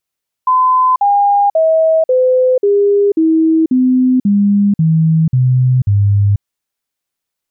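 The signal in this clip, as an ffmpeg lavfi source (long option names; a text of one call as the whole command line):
ffmpeg -f lavfi -i "aevalsrc='0.422*clip(min(mod(t,0.54),0.49-mod(t,0.54))/0.005,0,1)*sin(2*PI*1020*pow(2,-floor(t/0.54)/3)*mod(t,0.54))':duration=5.94:sample_rate=44100" out.wav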